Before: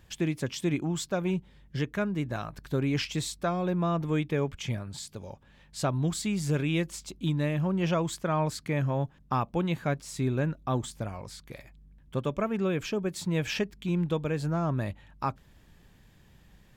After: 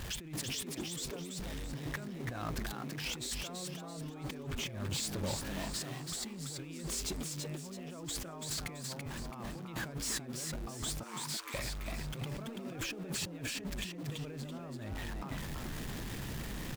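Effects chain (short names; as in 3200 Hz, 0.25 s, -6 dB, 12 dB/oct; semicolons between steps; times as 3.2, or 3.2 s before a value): zero-crossing step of -38 dBFS; in parallel at -11 dB: bit-crush 7-bit; on the sum: negative-ratio compressor -35 dBFS, ratio -1; 11.03–11.54 elliptic high-pass 890 Hz, stop band 40 dB; on a send: frequency-shifting echo 0.333 s, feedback 36%, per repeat +100 Hz, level -4.5 dB; on the sum: gain -7.5 dB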